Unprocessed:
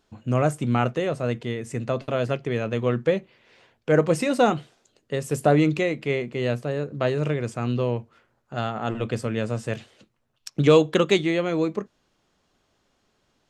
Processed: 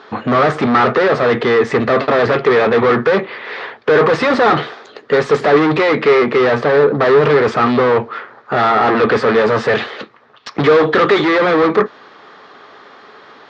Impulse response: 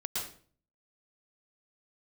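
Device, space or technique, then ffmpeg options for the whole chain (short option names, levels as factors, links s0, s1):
overdrive pedal into a guitar cabinet: -filter_complex "[0:a]asplit=2[s0][s1];[s1]highpass=f=720:p=1,volume=100,asoftclip=type=tanh:threshold=0.631[s2];[s0][s2]amix=inputs=2:normalize=0,lowpass=f=7700:p=1,volume=0.501,highpass=91,equalizer=f=260:t=q:w=4:g=3,equalizer=f=430:t=q:w=4:g=9,equalizer=f=830:t=q:w=4:g=4,equalizer=f=1200:t=q:w=4:g=9,equalizer=f=1800:t=q:w=4:g=6,equalizer=f=2800:t=q:w=4:g=-6,lowpass=f=4100:w=0.5412,lowpass=f=4100:w=1.3066,volume=0.562"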